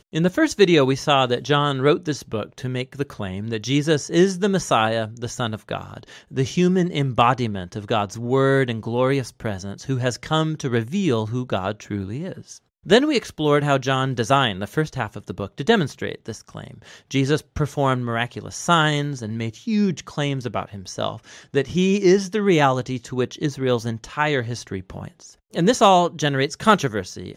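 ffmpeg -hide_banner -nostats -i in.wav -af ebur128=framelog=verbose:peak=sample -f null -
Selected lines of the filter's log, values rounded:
Integrated loudness:
  I:         -21.5 LUFS
  Threshold: -31.8 LUFS
Loudness range:
  LRA:         3.5 LU
  Threshold: -42.2 LUFS
  LRA low:   -24.1 LUFS
  LRA high:  -20.7 LUFS
Sample peak:
  Peak:       -2.3 dBFS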